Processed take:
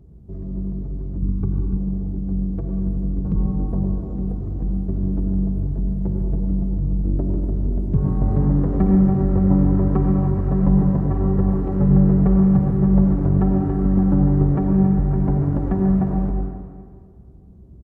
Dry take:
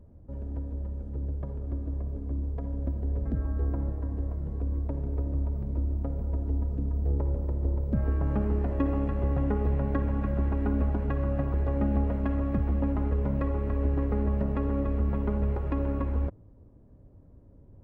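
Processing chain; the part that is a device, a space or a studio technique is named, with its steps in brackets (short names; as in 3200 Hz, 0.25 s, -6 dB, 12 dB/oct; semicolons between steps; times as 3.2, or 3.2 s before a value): HPF 100 Hz 12 dB/oct; monster voice (pitch shift -6.5 st; low shelf 230 Hz +5 dB; reverb RT60 1.9 s, pre-delay 83 ms, DRR 2 dB); 1.22–1.77 comb 0.8 ms, depth 80%; gain +6.5 dB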